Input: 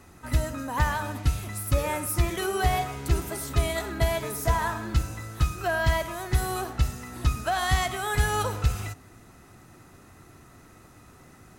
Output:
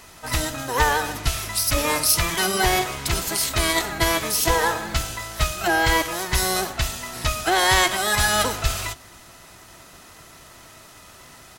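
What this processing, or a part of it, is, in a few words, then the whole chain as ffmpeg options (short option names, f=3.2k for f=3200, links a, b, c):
octave pedal: -filter_complex "[0:a]tiltshelf=f=970:g=-7.5,asplit=2[a][b];[b]asetrate=22050,aresample=44100,atempo=2,volume=-2dB[c];[a][c]amix=inputs=2:normalize=0,volume=4dB"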